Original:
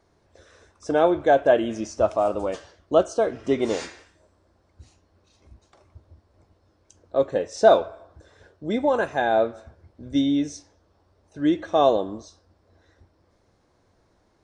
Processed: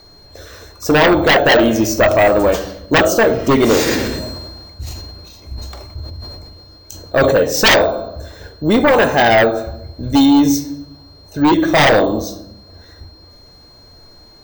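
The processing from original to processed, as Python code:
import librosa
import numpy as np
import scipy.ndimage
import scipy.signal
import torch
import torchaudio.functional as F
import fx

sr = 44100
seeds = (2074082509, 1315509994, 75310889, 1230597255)

y = fx.low_shelf(x, sr, hz=75.0, db=10.0)
y = fx.hum_notches(y, sr, base_hz=50, count=2)
y = fx.room_shoebox(y, sr, seeds[0], volume_m3=190.0, walls='mixed', distance_m=0.37)
y = np.repeat(y[::2], 2)[:len(y)]
y = fx.fold_sine(y, sr, drive_db=15, ceiling_db=-2.0)
y = fx.high_shelf(y, sr, hz=5200.0, db=7.0)
y = y + 10.0 ** (-39.0 / 20.0) * np.sin(2.0 * np.pi * 4200.0 * np.arange(len(y)) / sr)
y = fx.sustainer(y, sr, db_per_s=29.0, at=(3.86, 7.35), fade=0.02)
y = F.gain(torch.from_numpy(y), -5.0).numpy()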